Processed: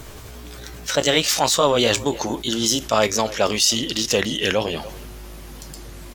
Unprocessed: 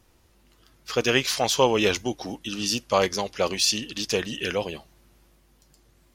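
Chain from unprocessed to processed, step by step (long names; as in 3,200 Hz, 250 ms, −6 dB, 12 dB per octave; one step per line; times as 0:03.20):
pitch glide at a constant tempo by +3.5 semitones ending unshifted
in parallel at −7 dB: dead-zone distortion −31.5 dBFS
on the sum: far-end echo of a speakerphone 290 ms, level −30 dB
envelope flattener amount 50%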